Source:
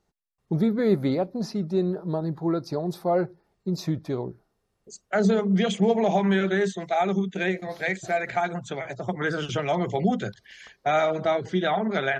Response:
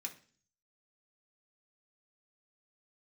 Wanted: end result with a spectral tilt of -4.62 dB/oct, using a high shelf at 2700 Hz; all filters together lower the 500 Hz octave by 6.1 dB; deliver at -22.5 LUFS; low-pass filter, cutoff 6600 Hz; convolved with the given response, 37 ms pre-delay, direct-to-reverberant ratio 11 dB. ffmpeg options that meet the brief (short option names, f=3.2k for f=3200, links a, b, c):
-filter_complex "[0:a]lowpass=6.6k,equalizer=f=500:t=o:g=-8,highshelf=f=2.7k:g=-9,asplit=2[a][b];[1:a]atrim=start_sample=2205,adelay=37[c];[b][c]afir=irnorm=-1:irlink=0,volume=-8.5dB[d];[a][d]amix=inputs=2:normalize=0,volume=6.5dB"